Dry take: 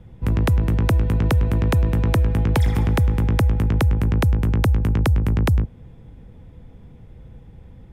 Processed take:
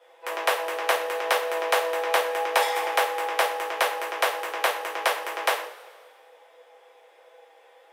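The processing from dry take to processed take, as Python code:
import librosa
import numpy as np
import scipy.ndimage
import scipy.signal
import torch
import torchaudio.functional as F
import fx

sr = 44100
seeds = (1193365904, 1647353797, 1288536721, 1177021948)

y = scipy.signal.sosfilt(scipy.signal.butter(8, 490.0, 'highpass', fs=sr, output='sos'), x)
y = fx.rev_double_slope(y, sr, seeds[0], early_s=0.37, late_s=1.8, knee_db=-20, drr_db=-5.5)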